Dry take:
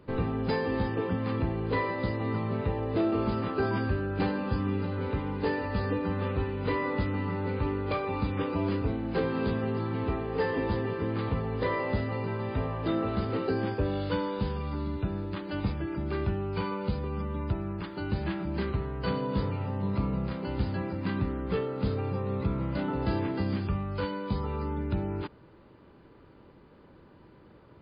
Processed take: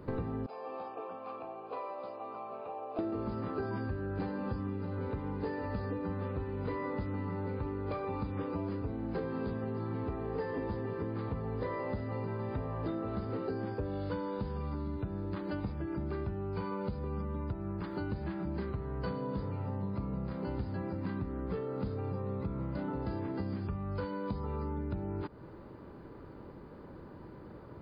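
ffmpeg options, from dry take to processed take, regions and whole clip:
-filter_complex "[0:a]asettb=1/sr,asplit=3[a][b][c];[a]atrim=end=0.464[d];[b]atrim=start=0.46:end=2.99,asetpts=PTS-STARTPTS,afade=t=in:d=0.004:c=qsin,afade=t=out:st=2.526:d=0.004:c=qsin,asplit=3[e][f][g];[e]bandpass=f=730:t=q:w=8,volume=0dB[h];[f]bandpass=f=1.09k:t=q:w=8,volume=-6dB[i];[g]bandpass=f=2.44k:t=q:w=8,volume=-9dB[j];[h][i][j]amix=inputs=3:normalize=0,aemphasis=mode=production:type=bsi[k];[c]atrim=start=2.986[l];[d][k]acrossfade=d=0.004:c1=hsin:c2=qsin[m];[m][l]acrossfade=d=0.004:c1=qsin:c2=hsin,equalizer=f=3k:t=o:w=1.2:g=-10,acompressor=threshold=-40dB:ratio=6,volume=6dB"

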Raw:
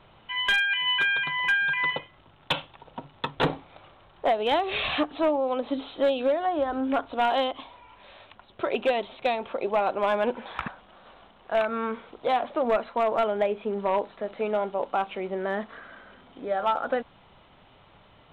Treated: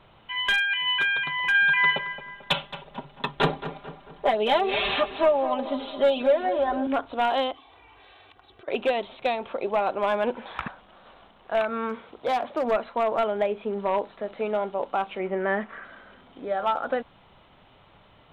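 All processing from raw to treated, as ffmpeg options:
-filter_complex "[0:a]asettb=1/sr,asplit=3[a][b][c];[a]atrim=end=1.544[d];[b]atrim=start=1.54:end=6.87,asetpts=PTS-STARTPTS,afade=t=in:d=0.004:c=qsin,afade=t=out:st=5.326:d=0.004:c=qsin,aecho=1:1:5:0.84,atrim=end_sample=235053,asplit=2[e][f];[f]adelay=221,lowpass=f=2.1k:p=1,volume=-11dB,asplit=2[g][h];[h]adelay=221,lowpass=f=2.1k:p=1,volume=0.5,asplit=2[i][j];[j]adelay=221,lowpass=f=2.1k:p=1,volume=0.5,asplit=2[k][l];[l]adelay=221,lowpass=f=2.1k:p=1,volume=0.5,asplit=2[m][n];[n]adelay=221,lowpass=f=2.1k:p=1,volume=0.5[o];[e][g][i][k][m][o]amix=inputs=6:normalize=0,atrim=end_sample=235053[p];[c]atrim=start=6.866[q];[d][p]acrossfade=d=0.004:c1=hsin:c2=qsin[r];[r][q]acrossfade=d=0.004:c1=qsin:c2=hsin,asettb=1/sr,asplit=3[s][t][u];[s]atrim=end=7.544[v];[t]atrim=start=7.54:end=8.68,asetpts=PTS-STARTPTS,afade=t=in:d=0.004:c=qsin,afade=t=out:st=1.136:d=0.004:c=qsin,highpass=44,aecho=1:1:2.6:0.75,atrim=end_sample=50274,acompressor=threshold=-48dB:ratio=8:attack=3.2:release=140:knee=1:detection=peak[w];[u]atrim=start=8.676[x];[v][w]acrossfade=d=0.004:c1=hsin:c2=qsin[y];[y][x]acrossfade=d=0.004:c1=qsin:c2=hsin,asettb=1/sr,asplit=3[z][aa][ab];[z]atrim=end=11.894[ac];[aa]atrim=start=11.89:end=12.71,asetpts=PTS-STARTPTS,afade=t=in:d=0.004:c=qsin,afade=t=out:st=0.816:d=0.004:c=qsin,highpass=41,volume=20dB,asoftclip=hard,volume=-20dB[ad];[ab]atrim=start=12.706[ae];[ac][ad]acrossfade=d=0.004:c1=hsin:c2=qsin[af];[af][ae]acrossfade=d=0.004:c1=qsin:c2=hsin,asettb=1/sr,asplit=3[ag][ah][ai];[ag]atrim=end=15.194[aj];[ah]atrim=start=15.19:end=15.85,asetpts=PTS-STARTPTS,afade=t=in:d=0.004:c=qsin,afade=t=out:st=0.656:d=0.004:c=qsin,lowpass=f=2.2k:t=q:w=1.7,aecho=1:1:5.2:0.37,atrim=end_sample=29106[ak];[ai]atrim=start=15.846[al];[aj][ak]acrossfade=d=0.004:c1=hsin:c2=qsin[am];[am][al]acrossfade=d=0.004:c1=qsin:c2=hsin"

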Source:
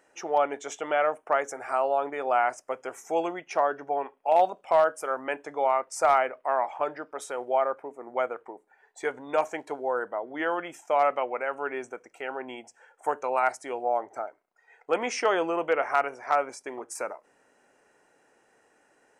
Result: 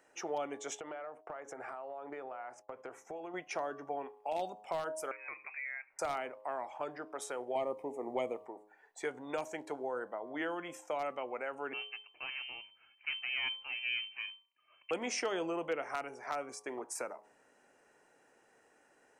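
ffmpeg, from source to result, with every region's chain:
-filter_complex "[0:a]asettb=1/sr,asplit=3[a][b][c];[a]atrim=end=0.804[d];[b]atrim=start=0.8:end=3.34,asetpts=PTS-STARTPTS,afade=t=in:d=0.004:c=qsin,afade=t=out:st=2.536:d=0.004:c=qsin,lowpass=f=2k:p=1,acompressor=threshold=-36dB:ratio=12:attack=3.2:release=140:knee=1:detection=peak,agate=range=-33dB:threshold=-56dB:ratio=3:release=100:detection=peak[e];[c]atrim=start=3.336[f];[d][e]acrossfade=d=0.004:c1=hsin:c2=qsin[g];[g][f]acrossfade=d=0.004:c1=qsin:c2=hsin,asettb=1/sr,asplit=3[h][i][j];[h]atrim=end=5.114[k];[i]atrim=start=5.11:end=5.99,asetpts=PTS-STARTPTS,afade=t=in:d=0.004:c=qsin,afade=t=out:st=0.876:d=0.004:c=qsin,acompressor=threshold=-40dB:ratio=2.5:attack=3.2:release=140:knee=1:detection=peak,lowpass=f=2.4k:t=q:w=0.5098,lowpass=f=2.4k:t=q:w=0.6013,lowpass=f=2.4k:t=q:w=0.9,lowpass=f=2.4k:t=q:w=2.563,afreqshift=-2800[l];[j]atrim=start=5.986[m];[k][l]acrossfade=d=0.004:c1=hsin:c2=qsin[n];[n][m]acrossfade=d=0.004:c1=qsin:c2=hsin,asettb=1/sr,asplit=3[o][p][q];[o]atrim=end=7.554[r];[p]atrim=start=7.55:end=8.46,asetpts=PTS-STARTPTS,afade=t=in:d=0.004:c=qsin,afade=t=out:st=0.906:d=0.004:c=qsin,asuperstop=centerf=1500:order=4:qfactor=1.8,acontrast=87[s];[q]atrim=start=8.456[t];[r][s]acrossfade=d=0.004:c1=hsin:c2=qsin[u];[u][t]acrossfade=d=0.004:c1=qsin:c2=hsin,asettb=1/sr,asplit=3[v][w][x];[v]atrim=end=11.734[y];[w]atrim=start=11.73:end=14.91,asetpts=PTS-STARTPTS,afade=t=in:d=0.004:c=qsin,afade=t=out:st=3.176:d=0.004:c=qsin,aeval=exprs='if(lt(val(0),0),0.251*val(0),val(0))':c=same,equalizer=f=1.5k:w=1.7:g=-8,lowpass=f=2.6k:t=q:w=0.5098,lowpass=f=2.6k:t=q:w=0.6013,lowpass=f=2.6k:t=q:w=0.9,lowpass=f=2.6k:t=q:w=2.563,afreqshift=-3100[z];[x]atrim=start=14.906[aa];[y][z]acrossfade=d=0.004:c1=hsin:c2=qsin[ab];[ab][aa]acrossfade=d=0.004:c1=qsin:c2=hsin,bandreject=f=104.9:t=h:w=4,bandreject=f=209.8:t=h:w=4,bandreject=f=314.7:t=h:w=4,bandreject=f=419.6:t=h:w=4,bandreject=f=524.5:t=h:w=4,bandreject=f=629.4:t=h:w=4,bandreject=f=734.3:t=h:w=4,bandreject=f=839.2:t=h:w=4,bandreject=f=944.1:t=h:w=4,bandreject=f=1.049k:t=h:w=4,bandreject=f=1.1539k:t=h:w=4,acrossover=split=340|3000[ac][ad][ae];[ad]acompressor=threshold=-36dB:ratio=4[af];[ac][af][ae]amix=inputs=3:normalize=0,volume=-3dB"

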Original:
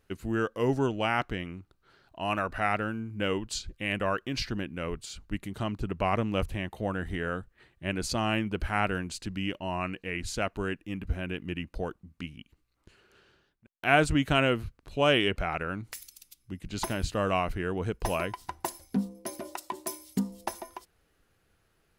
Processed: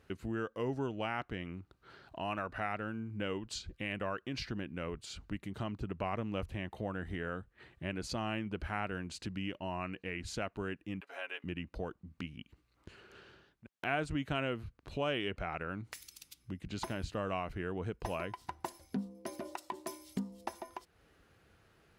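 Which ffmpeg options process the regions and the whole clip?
-filter_complex "[0:a]asettb=1/sr,asplit=3[a][b][c];[a]atrim=end=11.004[d];[b]atrim=start=11:end=11.44,asetpts=PTS-STARTPTS,afade=t=in:d=0.004:c=qsin,afade=t=out:st=0.436:d=0.004:c=qsin,highpass=f=580:w=0.5412,highpass=f=580:w=1.3066,aecho=1:1:7.2:0.7,atrim=end_sample=19404[e];[c]atrim=start=11.436[f];[d][e]acrossfade=d=0.004:c1=hsin:c2=qsin[g];[g][f]acrossfade=d=0.004:c1=qsin:c2=hsin,highpass=50,highshelf=f=7k:g=-11,acompressor=threshold=-51dB:ratio=2,volume=5.5dB"

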